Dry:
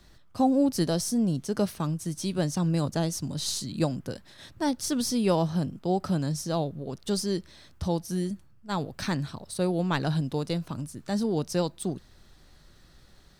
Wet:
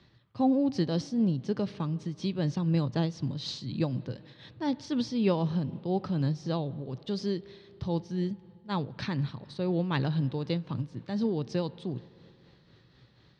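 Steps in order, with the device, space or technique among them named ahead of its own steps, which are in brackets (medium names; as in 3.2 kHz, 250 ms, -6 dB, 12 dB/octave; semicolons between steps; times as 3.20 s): combo amplifier with spring reverb and tremolo (spring tank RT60 3.1 s, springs 35/60 ms, chirp 30 ms, DRR 20 dB; tremolo 4 Hz, depth 42%; cabinet simulation 99–4300 Hz, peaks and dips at 120 Hz +10 dB, 690 Hz -6 dB, 1.4 kHz -5 dB)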